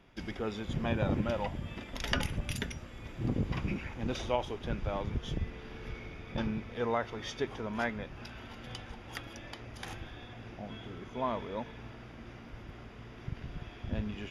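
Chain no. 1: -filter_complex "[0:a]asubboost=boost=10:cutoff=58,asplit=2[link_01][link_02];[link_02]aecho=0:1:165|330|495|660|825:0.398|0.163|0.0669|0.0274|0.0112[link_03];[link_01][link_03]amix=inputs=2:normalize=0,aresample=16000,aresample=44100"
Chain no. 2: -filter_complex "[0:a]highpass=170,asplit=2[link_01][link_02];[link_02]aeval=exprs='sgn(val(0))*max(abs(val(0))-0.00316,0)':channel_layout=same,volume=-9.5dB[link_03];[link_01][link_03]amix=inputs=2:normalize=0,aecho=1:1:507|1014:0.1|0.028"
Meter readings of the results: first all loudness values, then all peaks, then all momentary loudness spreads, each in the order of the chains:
−34.0, −36.0 LKFS; −11.5, −10.5 dBFS; 12, 16 LU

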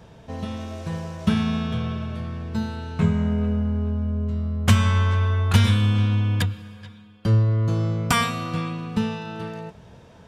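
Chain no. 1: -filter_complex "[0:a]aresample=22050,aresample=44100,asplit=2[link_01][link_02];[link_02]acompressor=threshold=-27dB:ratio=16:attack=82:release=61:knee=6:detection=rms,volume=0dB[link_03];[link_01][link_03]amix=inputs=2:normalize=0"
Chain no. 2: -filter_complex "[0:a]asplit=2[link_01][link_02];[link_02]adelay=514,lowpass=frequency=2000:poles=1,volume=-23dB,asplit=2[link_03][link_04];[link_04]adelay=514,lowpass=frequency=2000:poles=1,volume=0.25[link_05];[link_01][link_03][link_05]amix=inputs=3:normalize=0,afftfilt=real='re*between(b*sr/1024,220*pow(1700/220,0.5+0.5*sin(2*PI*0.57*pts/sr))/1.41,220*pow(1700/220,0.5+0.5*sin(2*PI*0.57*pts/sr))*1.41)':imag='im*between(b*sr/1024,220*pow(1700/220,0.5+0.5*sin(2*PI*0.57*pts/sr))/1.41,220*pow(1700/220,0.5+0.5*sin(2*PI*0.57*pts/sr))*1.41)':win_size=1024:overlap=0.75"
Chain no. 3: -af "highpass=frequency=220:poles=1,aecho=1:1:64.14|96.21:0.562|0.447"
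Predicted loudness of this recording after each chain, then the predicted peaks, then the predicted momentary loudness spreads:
−20.0, −32.0, −25.5 LKFS; −1.5, −10.5, −7.0 dBFS; 11, 22, 13 LU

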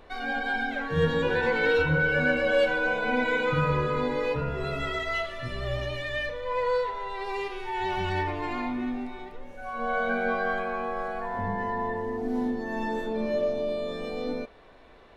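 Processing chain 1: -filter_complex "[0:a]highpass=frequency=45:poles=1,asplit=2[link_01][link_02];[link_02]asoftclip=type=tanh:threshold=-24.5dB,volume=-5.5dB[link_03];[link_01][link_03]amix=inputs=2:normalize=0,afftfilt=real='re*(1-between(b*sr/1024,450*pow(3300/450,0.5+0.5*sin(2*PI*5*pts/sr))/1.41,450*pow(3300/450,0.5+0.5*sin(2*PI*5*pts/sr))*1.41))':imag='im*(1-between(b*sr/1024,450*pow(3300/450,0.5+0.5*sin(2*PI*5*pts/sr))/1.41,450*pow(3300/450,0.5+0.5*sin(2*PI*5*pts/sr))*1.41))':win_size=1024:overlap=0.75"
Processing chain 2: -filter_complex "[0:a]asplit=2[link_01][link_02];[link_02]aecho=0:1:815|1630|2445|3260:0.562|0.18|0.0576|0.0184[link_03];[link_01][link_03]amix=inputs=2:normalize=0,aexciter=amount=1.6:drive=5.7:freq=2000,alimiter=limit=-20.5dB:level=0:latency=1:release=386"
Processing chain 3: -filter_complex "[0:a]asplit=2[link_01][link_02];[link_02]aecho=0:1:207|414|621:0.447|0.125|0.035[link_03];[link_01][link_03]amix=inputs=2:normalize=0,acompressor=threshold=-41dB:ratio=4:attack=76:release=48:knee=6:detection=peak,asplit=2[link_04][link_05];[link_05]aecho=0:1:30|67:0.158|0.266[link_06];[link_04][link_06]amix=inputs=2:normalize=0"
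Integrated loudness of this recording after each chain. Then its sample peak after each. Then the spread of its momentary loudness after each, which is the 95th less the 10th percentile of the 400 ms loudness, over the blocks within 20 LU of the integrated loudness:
−27.0, −30.5, −35.5 LKFS; −10.5, −20.5, −22.0 dBFS; 8, 3, 5 LU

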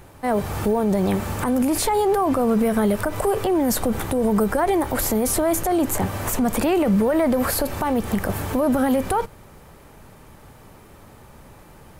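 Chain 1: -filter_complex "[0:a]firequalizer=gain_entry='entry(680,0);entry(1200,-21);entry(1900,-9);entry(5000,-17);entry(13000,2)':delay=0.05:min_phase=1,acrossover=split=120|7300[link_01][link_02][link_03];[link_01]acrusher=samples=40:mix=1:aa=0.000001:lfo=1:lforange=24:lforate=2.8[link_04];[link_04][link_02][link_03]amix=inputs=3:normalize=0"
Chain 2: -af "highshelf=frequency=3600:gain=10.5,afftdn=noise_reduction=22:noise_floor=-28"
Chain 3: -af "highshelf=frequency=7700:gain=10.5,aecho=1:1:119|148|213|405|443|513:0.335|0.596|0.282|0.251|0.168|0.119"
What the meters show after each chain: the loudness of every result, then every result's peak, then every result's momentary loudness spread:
−22.0, −19.5, −18.0 LKFS; −9.5, −4.0, −3.5 dBFS; 6, 8, 6 LU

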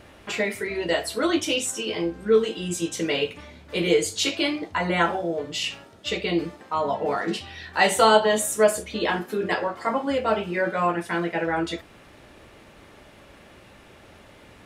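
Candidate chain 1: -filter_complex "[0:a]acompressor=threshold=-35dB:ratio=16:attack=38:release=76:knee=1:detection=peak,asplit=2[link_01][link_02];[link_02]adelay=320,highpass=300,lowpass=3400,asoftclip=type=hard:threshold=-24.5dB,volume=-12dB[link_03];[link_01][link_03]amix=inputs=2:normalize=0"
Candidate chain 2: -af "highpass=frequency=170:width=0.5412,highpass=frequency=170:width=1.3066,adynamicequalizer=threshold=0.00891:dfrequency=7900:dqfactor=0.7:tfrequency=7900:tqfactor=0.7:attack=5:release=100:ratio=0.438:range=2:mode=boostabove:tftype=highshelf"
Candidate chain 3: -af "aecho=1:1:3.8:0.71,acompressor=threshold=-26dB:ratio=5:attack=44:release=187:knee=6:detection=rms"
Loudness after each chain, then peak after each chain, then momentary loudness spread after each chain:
−34.0, −24.5, −28.5 LKFS; −15.5, −4.5, −13.5 dBFS; 17, 10, 21 LU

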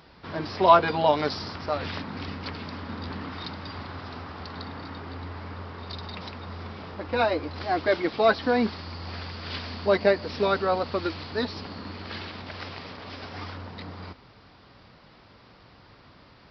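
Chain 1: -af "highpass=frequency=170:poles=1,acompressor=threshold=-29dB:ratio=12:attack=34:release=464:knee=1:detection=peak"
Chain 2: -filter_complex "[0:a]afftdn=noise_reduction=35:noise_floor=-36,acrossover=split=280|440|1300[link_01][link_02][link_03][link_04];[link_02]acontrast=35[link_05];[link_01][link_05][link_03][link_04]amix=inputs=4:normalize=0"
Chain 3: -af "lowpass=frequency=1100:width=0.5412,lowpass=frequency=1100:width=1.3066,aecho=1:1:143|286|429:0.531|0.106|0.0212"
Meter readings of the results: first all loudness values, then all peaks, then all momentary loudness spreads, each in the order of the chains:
−36.0, −24.5, −26.5 LKFS; −17.0, −4.5, −5.5 dBFS; 22, 20, 18 LU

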